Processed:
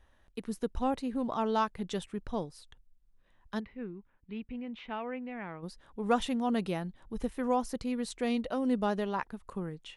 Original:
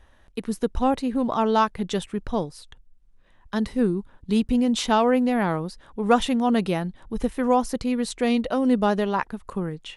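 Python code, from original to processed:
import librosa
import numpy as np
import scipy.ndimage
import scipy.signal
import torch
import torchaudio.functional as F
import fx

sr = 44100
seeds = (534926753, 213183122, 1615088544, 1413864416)

y = fx.ladder_lowpass(x, sr, hz=2700.0, resonance_pct=55, at=(3.59, 5.62), fade=0.02)
y = y * 10.0 ** (-9.0 / 20.0)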